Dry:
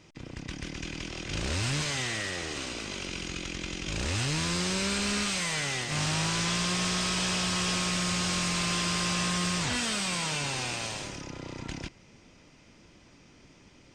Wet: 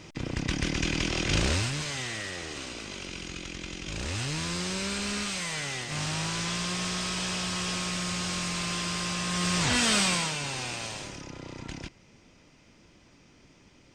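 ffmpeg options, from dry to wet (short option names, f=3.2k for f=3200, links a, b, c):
-af "volume=18.5dB,afade=t=out:st=1.28:d=0.43:silence=0.266073,afade=t=in:st=9.25:d=0.73:silence=0.334965,afade=t=out:st=9.98:d=0.36:silence=0.375837"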